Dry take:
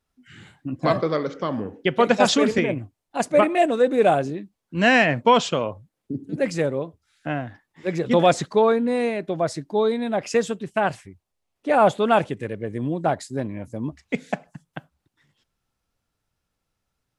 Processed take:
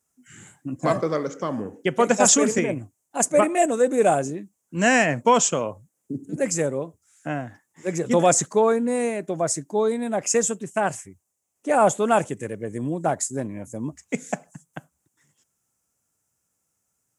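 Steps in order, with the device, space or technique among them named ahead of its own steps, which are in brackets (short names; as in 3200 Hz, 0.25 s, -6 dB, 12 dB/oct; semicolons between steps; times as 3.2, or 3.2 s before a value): budget condenser microphone (HPF 100 Hz; resonant high shelf 5400 Hz +10 dB, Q 3); gain -1 dB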